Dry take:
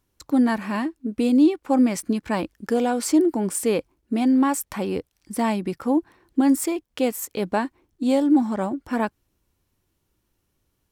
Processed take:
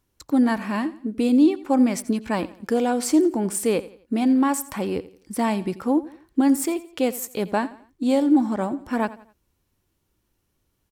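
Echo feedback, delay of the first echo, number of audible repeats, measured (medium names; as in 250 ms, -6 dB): 37%, 86 ms, 3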